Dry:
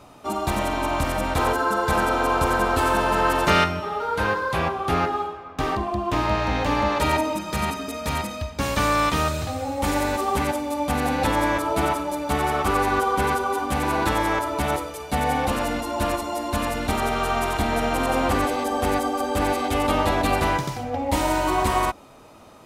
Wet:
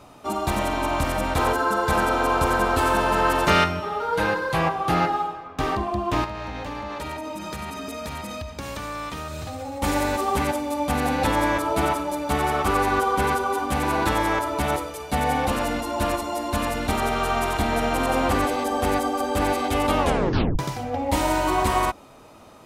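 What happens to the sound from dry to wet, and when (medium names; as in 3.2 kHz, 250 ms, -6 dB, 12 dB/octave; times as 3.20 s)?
4.12–5.47 s: comb 6.2 ms, depth 62%
6.24–9.82 s: compression 10:1, threshold -28 dBFS
19.99 s: tape stop 0.60 s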